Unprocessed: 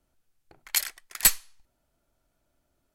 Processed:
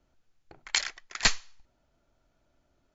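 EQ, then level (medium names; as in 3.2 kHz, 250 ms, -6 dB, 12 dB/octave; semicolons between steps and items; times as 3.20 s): brick-wall FIR low-pass 7.4 kHz; treble shelf 5.4 kHz -5 dB; +3.5 dB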